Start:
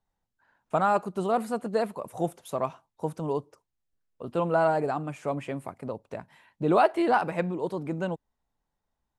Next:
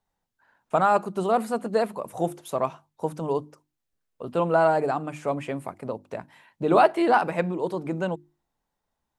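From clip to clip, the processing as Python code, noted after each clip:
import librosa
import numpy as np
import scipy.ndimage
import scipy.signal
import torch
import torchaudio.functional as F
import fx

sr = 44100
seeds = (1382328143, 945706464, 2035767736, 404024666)

y = fx.low_shelf(x, sr, hz=92.0, db=-6.0)
y = fx.hum_notches(y, sr, base_hz=50, count=7)
y = F.gain(torch.from_numpy(y), 3.5).numpy()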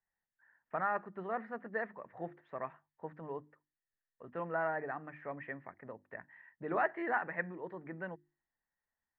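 y = fx.ladder_lowpass(x, sr, hz=1900.0, resonance_pct=85)
y = F.gain(torch.from_numpy(y), -4.0).numpy()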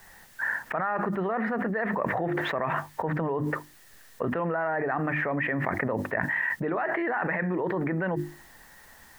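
y = fx.env_flatten(x, sr, amount_pct=100)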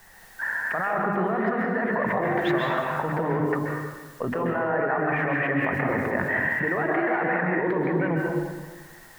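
y = fx.rev_plate(x, sr, seeds[0], rt60_s=1.4, hf_ratio=0.8, predelay_ms=120, drr_db=-1.0)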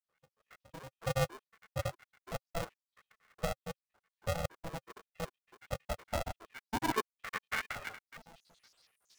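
y = fx.spec_dropout(x, sr, seeds[1], share_pct=83)
y = fx.filter_sweep_bandpass(y, sr, from_hz=210.0, to_hz=4700.0, start_s=5.81, end_s=8.65, q=3.1)
y = y * np.sign(np.sin(2.0 * np.pi * 330.0 * np.arange(len(y)) / sr))
y = F.gain(torch.from_numpy(y), 1.0).numpy()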